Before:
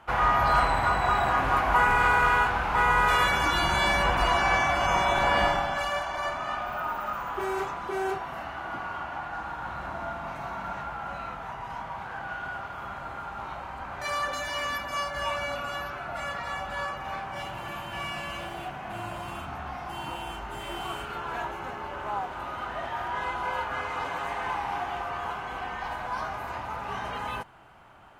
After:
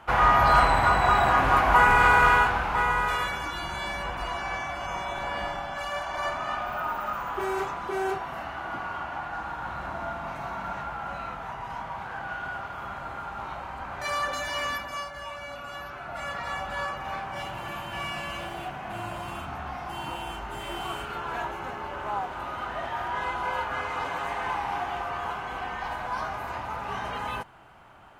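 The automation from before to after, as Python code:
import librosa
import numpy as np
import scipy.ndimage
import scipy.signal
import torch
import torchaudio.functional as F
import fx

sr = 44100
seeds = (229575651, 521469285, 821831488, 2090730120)

y = fx.gain(x, sr, db=fx.line((2.3, 3.5), (3.52, -8.5), (5.45, -8.5), (6.22, 1.0), (14.69, 1.0), (15.28, -8.5), (16.46, 1.0)))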